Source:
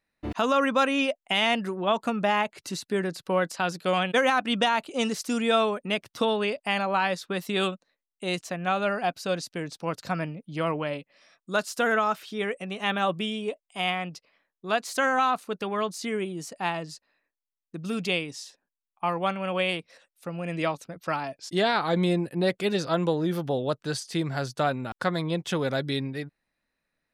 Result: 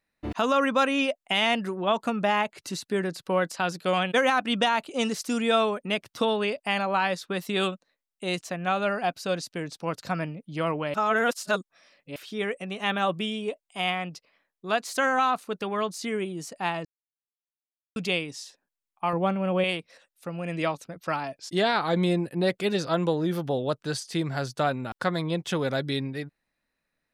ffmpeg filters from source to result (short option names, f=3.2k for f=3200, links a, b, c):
-filter_complex "[0:a]asettb=1/sr,asplit=3[a][b][c];[a]atrim=end=19.134[d];[b]atrim=start=19.13:end=19.64,asetpts=PTS-STARTPTS,afade=t=in:d=0.004:c=qsin,afade=t=out:st=0.506:d=0.004:c=qsin,tiltshelf=f=850:g=7[e];[c]atrim=start=19.636[f];[d][e]acrossfade=d=0.004:c1=hsin:c2=qsin[g];[g][f]acrossfade=d=0.004:c1=qsin:c2=hsin,asplit=5[h][i][j][k][l];[h]atrim=end=10.942[m];[i]atrim=start=10.938:end=12.162,asetpts=PTS-STARTPTS,areverse[n];[j]atrim=start=12.158:end=16.85,asetpts=PTS-STARTPTS,afade=t=out:st=4.688:d=0.004:c=hsin[o];[k]atrim=start=16.85:end=17.96,asetpts=PTS-STARTPTS,volume=0[p];[l]atrim=start=17.96,asetpts=PTS-STARTPTS,afade=t=in:d=0.004:c=hsin[q];[m][n]acrossfade=d=0.004:c1=hsin:c2=hsin[r];[o][p][q]concat=n=3:v=0:a=1[s];[r][s]acrossfade=d=0.004:c1=hsin:c2=hsin"